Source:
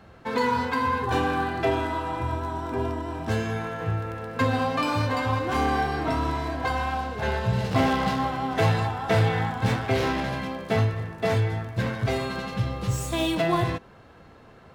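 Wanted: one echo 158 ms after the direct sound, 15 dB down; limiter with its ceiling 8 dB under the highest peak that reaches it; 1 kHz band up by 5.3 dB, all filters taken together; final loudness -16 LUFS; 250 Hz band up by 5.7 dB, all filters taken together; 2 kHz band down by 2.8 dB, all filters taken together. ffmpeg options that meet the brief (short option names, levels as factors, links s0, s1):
-af "equalizer=f=250:t=o:g=6.5,equalizer=f=1000:t=o:g=7.5,equalizer=f=2000:t=o:g=-7,alimiter=limit=0.2:level=0:latency=1,aecho=1:1:158:0.178,volume=2.66"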